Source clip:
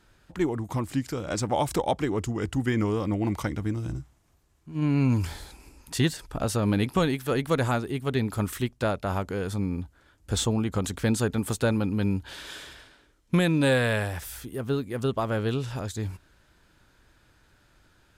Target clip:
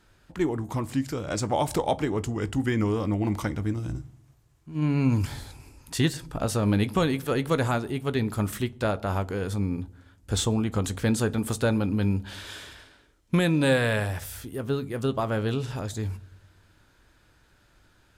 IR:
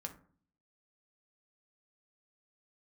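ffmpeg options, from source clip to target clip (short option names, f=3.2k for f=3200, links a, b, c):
-filter_complex "[0:a]asplit=2[a][b];[1:a]atrim=start_sample=2205,asetrate=22932,aresample=44100,adelay=19[c];[b][c]afir=irnorm=-1:irlink=0,volume=-15dB[d];[a][d]amix=inputs=2:normalize=0"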